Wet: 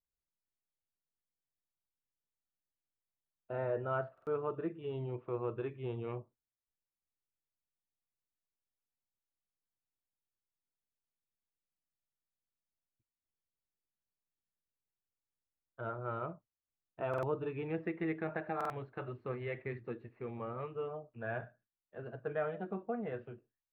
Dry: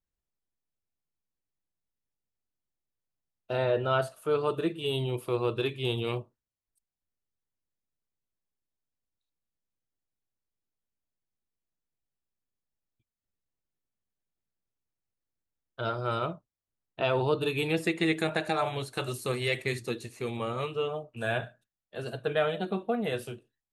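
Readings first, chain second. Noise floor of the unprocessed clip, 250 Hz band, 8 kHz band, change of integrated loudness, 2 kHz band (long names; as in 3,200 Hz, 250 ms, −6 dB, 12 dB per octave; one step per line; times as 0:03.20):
below −85 dBFS, −8.5 dB, below −25 dB, −9.0 dB, −12.0 dB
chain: low-pass filter 1,900 Hz 24 dB per octave
buffer that repeats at 0:04.13/0:08.58/0:17.09/0:18.56, samples 2,048, times 2
level −8.5 dB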